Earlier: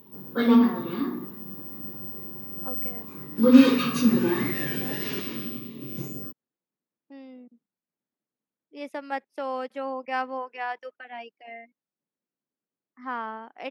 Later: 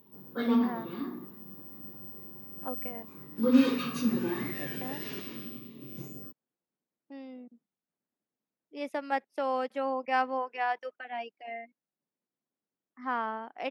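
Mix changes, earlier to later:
background -8.0 dB; master: add peaking EQ 700 Hz +3 dB 0.36 oct

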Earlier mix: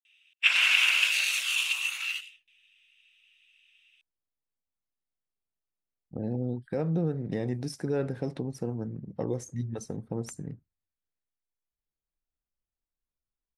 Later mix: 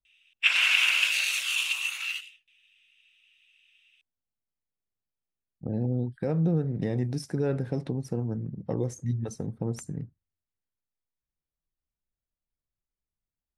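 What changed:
speech: entry -0.50 s; master: add peaking EQ 110 Hz +5 dB 1.9 oct

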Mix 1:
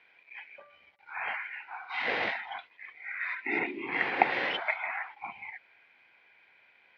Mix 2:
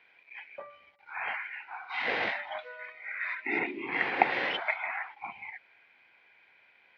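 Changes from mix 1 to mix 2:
first sound +9.5 dB; second sound: unmuted

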